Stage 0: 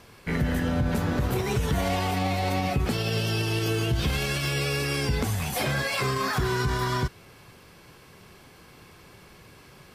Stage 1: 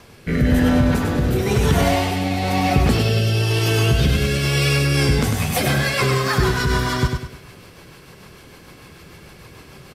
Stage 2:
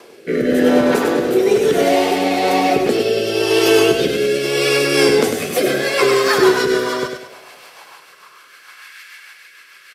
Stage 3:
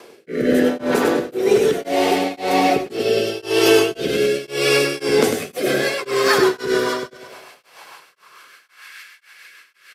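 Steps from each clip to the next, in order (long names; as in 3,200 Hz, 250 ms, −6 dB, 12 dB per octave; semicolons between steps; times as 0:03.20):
rotating-speaker cabinet horn 1 Hz, later 6.7 Hz, at 0:04.51; on a send: repeating echo 100 ms, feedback 39%, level −5 dB; on the sum: level +8.5 dB
rotating-speaker cabinet horn 0.75 Hz; high-pass filter sweep 390 Hz → 1,700 Hz, 0:06.61–0:09.00; on a send at −24 dB: convolution reverb RT60 1.6 s, pre-delay 6 ms; on the sum: level +5.5 dB
tremolo along a rectified sine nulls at 1.9 Hz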